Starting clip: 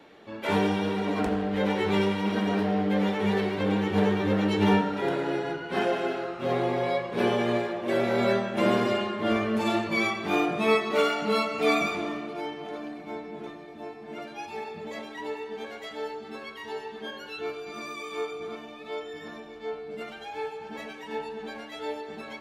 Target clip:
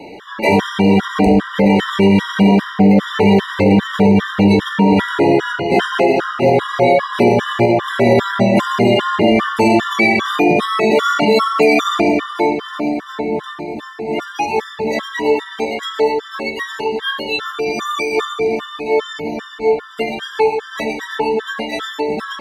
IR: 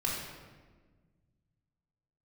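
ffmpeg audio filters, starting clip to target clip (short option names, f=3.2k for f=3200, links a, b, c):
-filter_complex "[0:a]asplit=2[a][b];[1:a]atrim=start_sample=2205[c];[b][c]afir=irnorm=-1:irlink=0,volume=-15dB[d];[a][d]amix=inputs=2:normalize=0,alimiter=level_in=19.5dB:limit=-1dB:release=50:level=0:latency=1,afftfilt=real='re*gt(sin(2*PI*2.5*pts/sr)*(1-2*mod(floor(b*sr/1024/970),2)),0)':imag='im*gt(sin(2*PI*2.5*pts/sr)*(1-2*mod(floor(b*sr/1024/970),2)),0)':win_size=1024:overlap=0.75,volume=-1.5dB"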